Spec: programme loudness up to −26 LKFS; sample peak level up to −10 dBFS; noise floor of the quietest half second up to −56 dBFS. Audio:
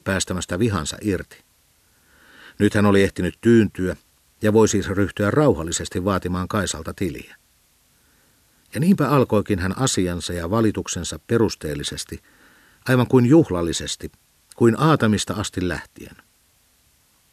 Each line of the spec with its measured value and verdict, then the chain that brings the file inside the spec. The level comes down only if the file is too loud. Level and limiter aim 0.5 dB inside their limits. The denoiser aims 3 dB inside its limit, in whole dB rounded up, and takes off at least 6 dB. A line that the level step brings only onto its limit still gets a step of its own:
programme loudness −20.5 LKFS: out of spec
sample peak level −4.0 dBFS: out of spec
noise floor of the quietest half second −60 dBFS: in spec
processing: level −6 dB
brickwall limiter −10.5 dBFS

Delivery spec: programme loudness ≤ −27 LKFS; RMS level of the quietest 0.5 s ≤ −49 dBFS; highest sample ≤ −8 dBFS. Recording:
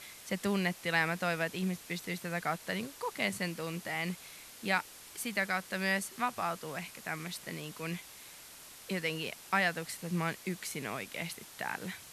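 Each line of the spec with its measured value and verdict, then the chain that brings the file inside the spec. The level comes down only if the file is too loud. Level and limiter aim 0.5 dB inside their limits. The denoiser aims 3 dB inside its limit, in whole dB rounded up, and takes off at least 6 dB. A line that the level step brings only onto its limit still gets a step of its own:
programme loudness −35.0 LKFS: in spec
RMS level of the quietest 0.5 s −52 dBFS: in spec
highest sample −13.5 dBFS: in spec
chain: no processing needed

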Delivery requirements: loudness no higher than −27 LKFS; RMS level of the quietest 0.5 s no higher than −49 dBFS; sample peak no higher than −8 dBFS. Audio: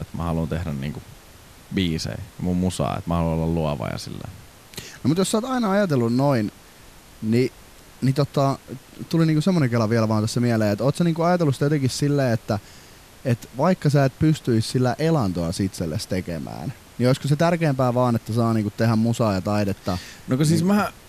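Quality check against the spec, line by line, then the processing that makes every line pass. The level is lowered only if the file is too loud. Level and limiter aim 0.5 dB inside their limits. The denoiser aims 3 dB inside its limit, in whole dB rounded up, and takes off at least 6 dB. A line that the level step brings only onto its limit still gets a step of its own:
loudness −22.5 LKFS: out of spec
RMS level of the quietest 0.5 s −47 dBFS: out of spec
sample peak −9.0 dBFS: in spec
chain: level −5 dB

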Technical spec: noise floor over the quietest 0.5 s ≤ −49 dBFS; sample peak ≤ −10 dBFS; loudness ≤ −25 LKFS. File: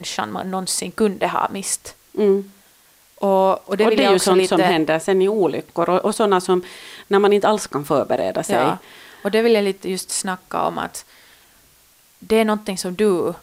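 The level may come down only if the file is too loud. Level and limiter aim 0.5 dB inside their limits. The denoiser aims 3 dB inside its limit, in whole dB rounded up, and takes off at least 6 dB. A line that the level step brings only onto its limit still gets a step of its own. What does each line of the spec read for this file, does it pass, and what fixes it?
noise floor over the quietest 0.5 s −54 dBFS: in spec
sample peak −5.5 dBFS: out of spec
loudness −19.0 LKFS: out of spec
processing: level −6.5 dB

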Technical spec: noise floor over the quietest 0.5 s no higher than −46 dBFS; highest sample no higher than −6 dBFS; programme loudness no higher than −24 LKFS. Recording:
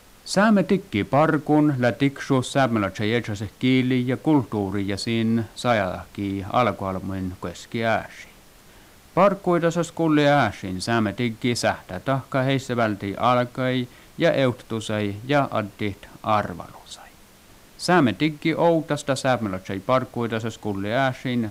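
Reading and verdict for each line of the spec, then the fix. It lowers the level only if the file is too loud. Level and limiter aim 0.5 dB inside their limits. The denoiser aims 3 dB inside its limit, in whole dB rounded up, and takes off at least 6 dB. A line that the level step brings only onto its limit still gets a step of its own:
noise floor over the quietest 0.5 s −50 dBFS: in spec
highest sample −8.5 dBFS: in spec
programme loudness −23.0 LKFS: out of spec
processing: level −1.5 dB

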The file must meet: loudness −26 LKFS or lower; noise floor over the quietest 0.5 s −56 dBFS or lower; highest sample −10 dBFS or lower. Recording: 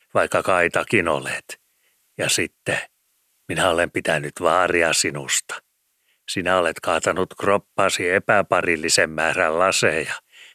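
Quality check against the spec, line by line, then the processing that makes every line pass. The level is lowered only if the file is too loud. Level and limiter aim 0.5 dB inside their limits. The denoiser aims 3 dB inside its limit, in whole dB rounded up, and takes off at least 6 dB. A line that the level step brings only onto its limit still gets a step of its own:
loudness −20.0 LKFS: out of spec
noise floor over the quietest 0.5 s −68 dBFS: in spec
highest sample −4.0 dBFS: out of spec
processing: level −6.5 dB

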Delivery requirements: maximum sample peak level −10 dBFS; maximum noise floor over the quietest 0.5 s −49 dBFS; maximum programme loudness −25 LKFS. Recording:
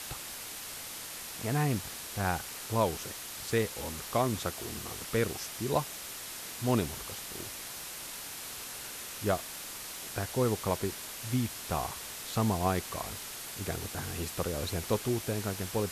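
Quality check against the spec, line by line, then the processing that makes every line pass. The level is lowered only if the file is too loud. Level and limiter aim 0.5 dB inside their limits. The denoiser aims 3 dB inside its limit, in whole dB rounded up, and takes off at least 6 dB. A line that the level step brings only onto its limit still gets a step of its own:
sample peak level −14.5 dBFS: in spec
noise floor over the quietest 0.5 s −42 dBFS: out of spec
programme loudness −34.0 LKFS: in spec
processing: broadband denoise 10 dB, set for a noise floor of −42 dBFS

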